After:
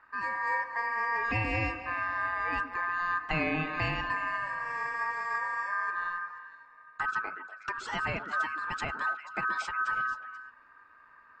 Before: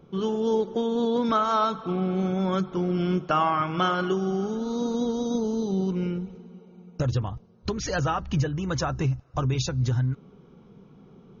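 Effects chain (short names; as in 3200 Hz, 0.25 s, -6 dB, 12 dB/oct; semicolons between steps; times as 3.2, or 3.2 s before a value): ring modulator 1400 Hz; high shelf 4700 Hz -12 dB; on a send: delay with a stepping band-pass 0.121 s, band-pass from 300 Hz, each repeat 1.4 oct, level -5 dB; on the sum: gain -3 dB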